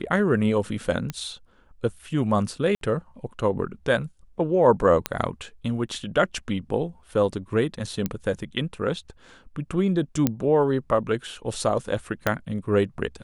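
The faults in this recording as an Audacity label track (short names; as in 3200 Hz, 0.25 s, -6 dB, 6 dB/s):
1.100000	1.100000	pop -15 dBFS
2.750000	2.810000	gap 62 ms
5.060000	5.060000	pop -7 dBFS
8.060000	8.060000	pop -12 dBFS
10.270000	10.270000	pop -7 dBFS
12.270000	12.270000	pop -7 dBFS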